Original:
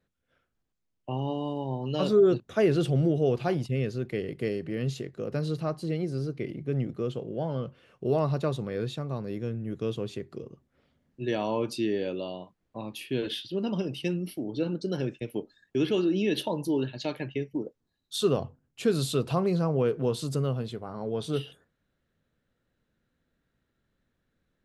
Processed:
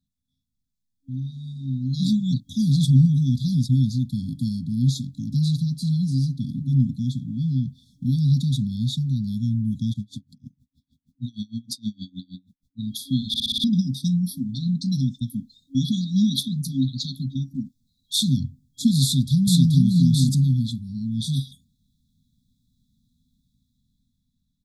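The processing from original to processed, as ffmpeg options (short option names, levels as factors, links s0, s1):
-filter_complex "[0:a]asplit=3[s0][s1][s2];[s0]afade=t=out:st=9.92:d=0.02[s3];[s1]aeval=exprs='val(0)*pow(10,-33*(0.5-0.5*cos(2*PI*6.4*n/s))/20)':c=same,afade=t=in:st=9.92:d=0.02,afade=t=out:st=12.78:d=0.02[s4];[s2]afade=t=in:st=12.78:d=0.02[s5];[s3][s4][s5]amix=inputs=3:normalize=0,asplit=2[s6][s7];[s7]afade=t=in:st=19.04:d=0.01,afade=t=out:st=19.86:d=0.01,aecho=0:1:430|860:0.944061|0.0944061[s8];[s6][s8]amix=inputs=2:normalize=0,asplit=7[s9][s10][s11][s12][s13][s14][s15];[s9]atrim=end=13.342[s16];[s10]atrim=start=13.278:end=13.342[s17];[s11]atrim=start=13.278:end=13.342[s18];[s12]atrim=start=13.278:end=13.342[s19];[s13]atrim=start=13.278:end=13.342[s20];[s14]atrim=start=13.278:end=13.342[s21];[s15]atrim=start=13.638[s22];[s16][s17]acrossfade=d=0.004:c1=hsin:c2=hsin[s23];[s23][s18]acrossfade=d=0.004:c1=hsin:c2=hsin[s24];[s24][s19]acrossfade=d=0.004:c1=hsin:c2=hsin[s25];[s25][s20]acrossfade=d=0.004:c1=hsin:c2=hsin[s26];[s26][s21]acrossfade=d=0.004:c1=hsin:c2=hsin[s27];[s27][s22]acrossfade=d=0.004:c1=hsin:c2=hsin,afftfilt=real='re*(1-between(b*sr/4096,270,3300))':imag='im*(1-between(b*sr/4096,270,3300))':win_size=4096:overlap=0.75,dynaudnorm=f=110:g=31:m=3.55"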